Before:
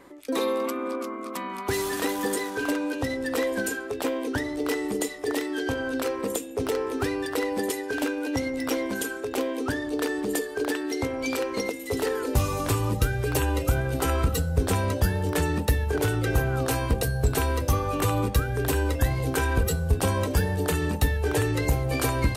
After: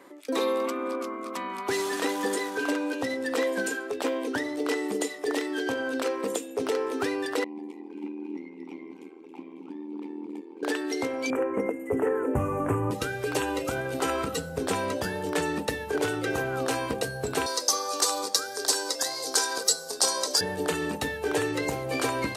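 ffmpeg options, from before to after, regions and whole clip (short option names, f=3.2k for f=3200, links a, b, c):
-filter_complex "[0:a]asettb=1/sr,asplit=3[a][b][c];[a]atrim=end=7.444[d];[b]atrim=start=7.44:end=10.63,asetpts=PTS-STARTPTS,afade=t=in:d=0.004:c=qsin,afade=t=out:st=3.186:d=0.004:c=qsin,asplit=3[e][f][g];[e]bandpass=f=300:t=q:w=8,volume=0dB[h];[f]bandpass=f=870:t=q:w=8,volume=-6dB[i];[g]bandpass=f=2.24k:t=q:w=8,volume=-9dB[j];[h][i][j]amix=inputs=3:normalize=0,asplit=5[k][l][m][n][o];[l]adelay=273,afreqshift=41,volume=-10dB[p];[m]adelay=546,afreqshift=82,volume=-18.6dB[q];[n]adelay=819,afreqshift=123,volume=-27.3dB[r];[o]adelay=1092,afreqshift=164,volume=-35.9dB[s];[k][p][q][r][s]amix=inputs=5:normalize=0,atrim=end_sample=140679,tremolo=f=80:d=0.824[t];[c]atrim=start=10.626[u];[d][t]acrossfade=d=0.004:c1=hsin:c2=qsin[v];[v][u]acrossfade=d=0.004:c1=qsin:c2=hsin,asettb=1/sr,asplit=3[w][x][y];[w]atrim=end=11.304[z];[x]atrim=start=11.3:end=12.91,asetpts=PTS-STARTPTS,afade=t=in:d=0.004:c=qsin,afade=t=out:st=1.606:d=0.004:c=qsin,asuperstop=centerf=4300:order=4:qfactor=0.63,aemphasis=mode=reproduction:type=bsi[aa];[y]atrim=start=12.906[ab];[z][aa]acrossfade=d=0.004:c1=hsin:c2=qsin[ac];[ac][ab]acrossfade=d=0.004:c1=qsin:c2=hsin,asettb=1/sr,asplit=3[ad][ae][af];[ad]atrim=end=17.464[ag];[ae]atrim=start=17.46:end=20.41,asetpts=PTS-STARTPTS,afade=t=in:d=0.004:c=qsin,afade=t=out:st=2.946:d=0.004:c=qsin,highpass=520,highshelf=f=3.6k:t=q:w=3:g=10.5[ah];[af]atrim=start=20.406[ai];[ag][ah]acrossfade=d=0.004:c1=hsin:c2=qsin[aj];[aj][ai]acrossfade=d=0.004:c1=qsin:c2=hsin,acrossover=split=9600[ak][al];[al]acompressor=threshold=-52dB:ratio=4:attack=1:release=60[am];[ak][am]amix=inputs=2:normalize=0,highpass=240"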